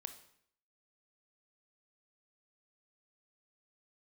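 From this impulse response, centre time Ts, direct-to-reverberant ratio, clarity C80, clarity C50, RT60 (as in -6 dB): 9 ms, 8.5 dB, 14.5 dB, 11.5 dB, 0.65 s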